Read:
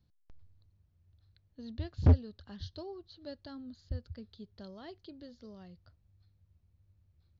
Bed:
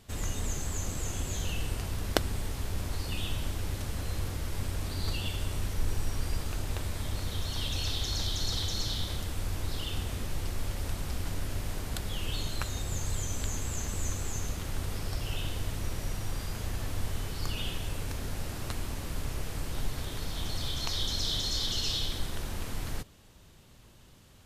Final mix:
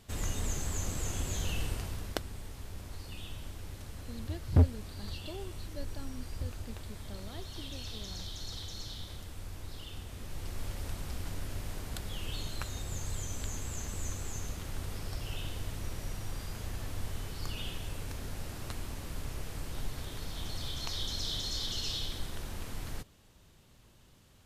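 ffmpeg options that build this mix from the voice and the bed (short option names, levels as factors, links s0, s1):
-filter_complex "[0:a]adelay=2500,volume=0.944[s0];[1:a]volume=1.68,afade=t=out:st=1.62:d=0.61:silence=0.354813,afade=t=in:st=10.11:d=0.53:silence=0.530884[s1];[s0][s1]amix=inputs=2:normalize=0"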